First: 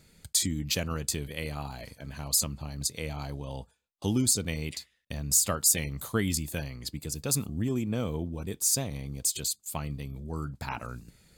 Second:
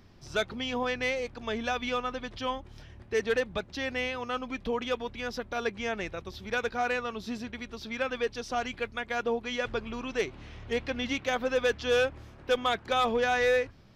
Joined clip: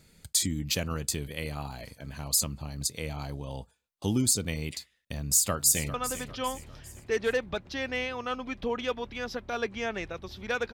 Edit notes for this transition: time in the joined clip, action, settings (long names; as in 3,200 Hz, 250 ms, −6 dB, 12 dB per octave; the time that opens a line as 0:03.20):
first
0:05.19–0:05.94: delay throw 400 ms, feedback 45%, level −13 dB
0:05.94: continue with second from 0:01.97